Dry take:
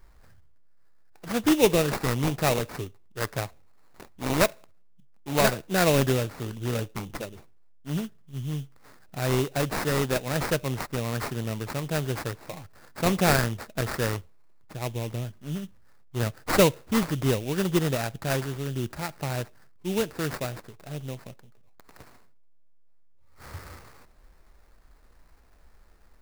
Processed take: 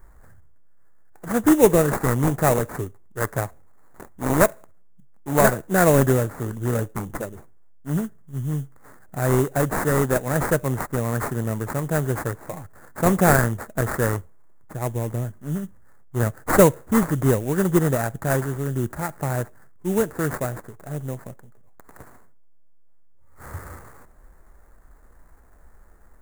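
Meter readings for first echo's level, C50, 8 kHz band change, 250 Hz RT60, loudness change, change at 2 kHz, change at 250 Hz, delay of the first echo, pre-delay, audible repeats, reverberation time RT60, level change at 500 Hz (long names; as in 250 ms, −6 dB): no echo audible, no reverb audible, +4.0 dB, no reverb audible, +5.0 dB, +3.5 dB, +5.5 dB, no echo audible, no reverb audible, no echo audible, no reverb audible, +5.5 dB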